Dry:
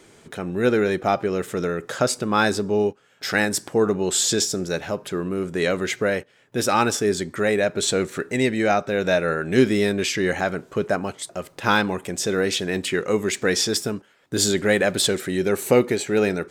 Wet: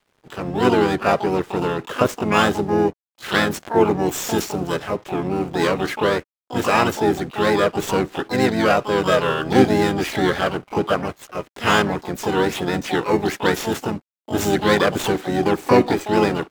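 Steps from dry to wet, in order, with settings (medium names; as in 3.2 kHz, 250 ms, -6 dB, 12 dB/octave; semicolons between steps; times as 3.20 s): median filter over 9 samples; crossover distortion -47 dBFS; harmony voices -4 st -4 dB, +12 st -5 dB; trim +1 dB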